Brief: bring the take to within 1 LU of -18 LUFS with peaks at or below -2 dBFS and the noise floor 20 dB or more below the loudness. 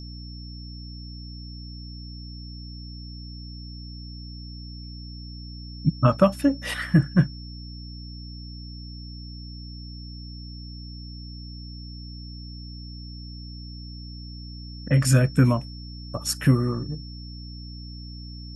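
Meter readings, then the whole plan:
hum 60 Hz; harmonics up to 300 Hz; hum level -36 dBFS; steady tone 5400 Hz; tone level -44 dBFS; loudness -23.0 LUFS; peak -4.5 dBFS; loudness target -18.0 LUFS
-> de-hum 60 Hz, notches 5; notch 5400 Hz, Q 30; gain +5 dB; limiter -2 dBFS

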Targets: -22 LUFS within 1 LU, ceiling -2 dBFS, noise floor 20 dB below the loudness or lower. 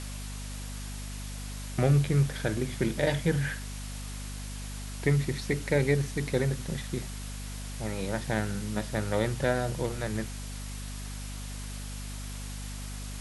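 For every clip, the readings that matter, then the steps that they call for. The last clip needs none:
hum 50 Hz; harmonics up to 250 Hz; hum level -36 dBFS; noise floor -38 dBFS; noise floor target -52 dBFS; loudness -31.5 LUFS; peak -11.5 dBFS; loudness target -22.0 LUFS
-> de-hum 50 Hz, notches 5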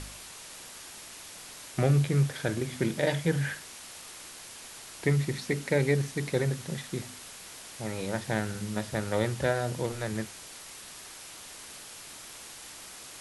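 hum none; noise floor -46 dBFS; noise floor target -50 dBFS
-> noise print and reduce 6 dB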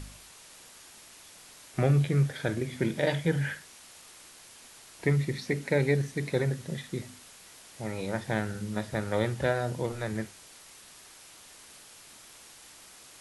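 noise floor -52 dBFS; loudness -30.0 LUFS; peak -12.0 dBFS; loudness target -22.0 LUFS
-> gain +8 dB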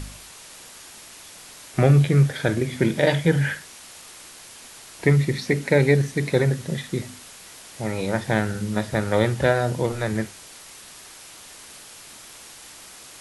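loudness -22.0 LUFS; peak -4.0 dBFS; noise floor -44 dBFS

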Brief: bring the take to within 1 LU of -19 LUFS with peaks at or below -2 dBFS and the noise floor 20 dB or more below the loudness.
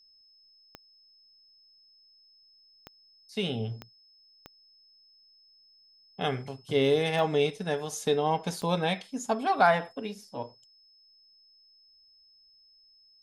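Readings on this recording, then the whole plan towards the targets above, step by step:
clicks 6; steady tone 5200 Hz; tone level -58 dBFS; loudness -29.0 LUFS; peak -10.0 dBFS; loudness target -19.0 LUFS
-> de-click; notch 5200 Hz, Q 30; gain +10 dB; limiter -2 dBFS

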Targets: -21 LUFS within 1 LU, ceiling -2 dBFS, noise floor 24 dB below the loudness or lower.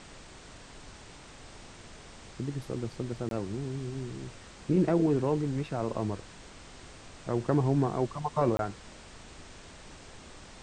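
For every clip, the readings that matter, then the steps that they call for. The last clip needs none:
dropouts 2; longest dropout 22 ms; noise floor -50 dBFS; noise floor target -55 dBFS; loudness -31.0 LUFS; peak -13.5 dBFS; loudness target -21.0 LUFS
-> interpolate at 3.29/8.57, 22 ms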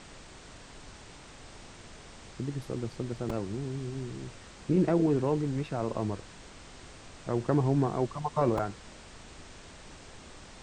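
dropouts 0; noise floor -50 dBFS; noise floor target -55 dBFS
-> noise print and reduce 6 dB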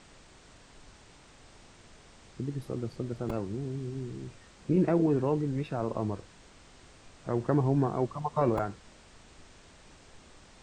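noise floor -56 dBFS; loudness -31.0 LUFS; peak -13.5 dBFS; loudness target -21.0 LUFS
-> gain +10 dB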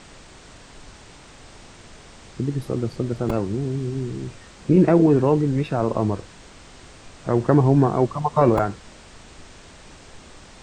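loudness -21.0 LUFS; peak -3.5 dBFS; noise floor -46 dBFS

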